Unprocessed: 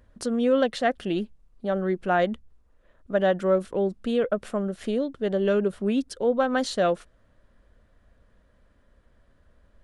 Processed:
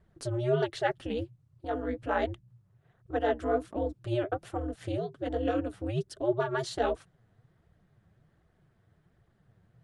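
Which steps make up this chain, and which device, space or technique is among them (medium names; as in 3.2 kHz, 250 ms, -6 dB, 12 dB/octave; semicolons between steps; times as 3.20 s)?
alien voice (ring modulator 120 Hz; flange 1.3 Hz, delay 1.5 ms, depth 9.6 ms, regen +26%)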